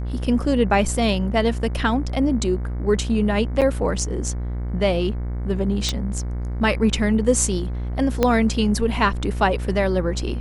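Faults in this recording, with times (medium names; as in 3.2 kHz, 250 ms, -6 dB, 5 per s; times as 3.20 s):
buzz 60 Hz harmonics 38 -26 dBFS
3.61–3.62 s: dropout 7.4 ms
5.89 s: pop -8 dBFS
8.23 s: pop -5 dBFS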